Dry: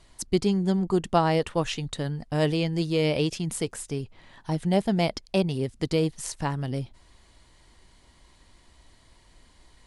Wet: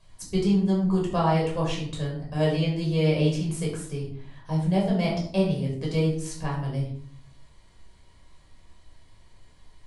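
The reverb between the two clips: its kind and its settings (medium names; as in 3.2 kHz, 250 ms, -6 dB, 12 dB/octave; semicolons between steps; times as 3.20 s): simulated room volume 710 m³, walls furnished, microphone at 5.5 m; trim -9.5 dB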